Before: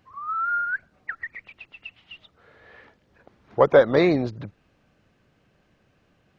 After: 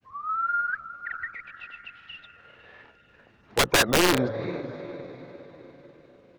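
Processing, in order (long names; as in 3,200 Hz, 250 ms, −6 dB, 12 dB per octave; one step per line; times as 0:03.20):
feedback delay with all-pass diffusion 452 ms, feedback 47%, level −13 dB
wrap-around overflow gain 12 dB
granular cloud, spray 26 ms, pitch spread up and down by 0 semitones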